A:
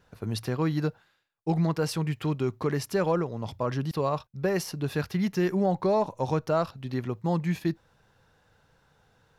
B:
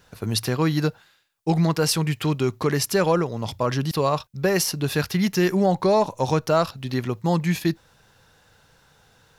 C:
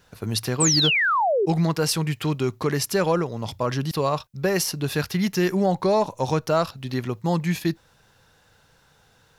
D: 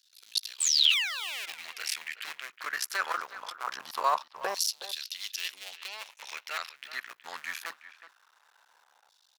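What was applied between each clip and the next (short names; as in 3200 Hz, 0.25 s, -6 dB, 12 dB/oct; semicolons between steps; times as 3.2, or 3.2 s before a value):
high shelf 2600 Hz +9.5 dB; gain +5 dB
painted sound fall, 0.6–1.46, 360–8600 Hz -19 dBFS; gain -1.5 dB
cycle switcher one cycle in 2, muted; LFO high-pass saw down 0.22 Hz 790–4300 Hz; speakerphone echo 0.37 s, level -13 dB; gain -4.5 dB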